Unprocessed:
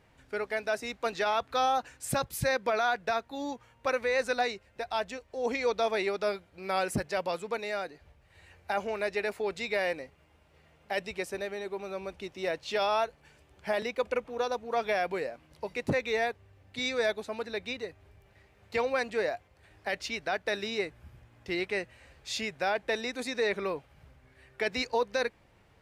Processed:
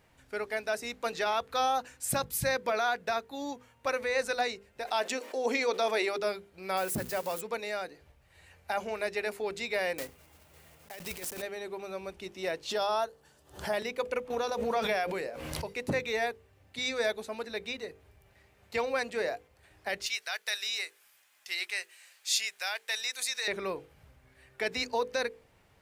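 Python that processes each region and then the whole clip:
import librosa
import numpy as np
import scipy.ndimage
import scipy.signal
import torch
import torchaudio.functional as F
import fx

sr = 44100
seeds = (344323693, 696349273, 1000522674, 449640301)

y = fx.chain(x, sr, fx.brickwall_highpass(low_hz=210.0),
    fx.env_flatten(amount_pct=50), at=(4.85, 6.18))
y = fx.chain(y, sr, fx.crossing_spikes(level_db=-28.5),
    fx.high_shelf(hz=3100.0, db=-9.0),
    fx.hum_notches(base_hz=60, count=8), at=(6.77, 7.41))
y = fx.chain(y, sr, fx.block_float(bits=3),
    fx.over_compress(threshold_db=-39.0, ratio=-1.0), at=(9.98, 11.43))
y = fx.chain(y, sr, fx.highpass(hz=92.0, slope=6),
    fx.peak_eq(hz=2300.0, db=-14.5, octaves=0.41),
    fx.pre_swell(db_per_s=140.0), at=(12.69, 13.73))
y = fx.chain(y, sr, fx.hum_notches(base_hz=60, count=9),
    fx.pre_swell(db_per_s=28.0), at=(14.3, 15.67))
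y = fx.chain(y, sr, fx.bessel_highpass(hz=1500.0, order=2),
    fx.high_shelf(hz=3400.0, db=9.5), at=(20.06, 23.48))
y = fx.high_shelf(y, sr, hz=7500.0, db=9.5)
y = fx.hum_notches(y, sr, base_hz=50, count=10)
y = F.gain(torch.from_numpy(y), -1.5).numpy()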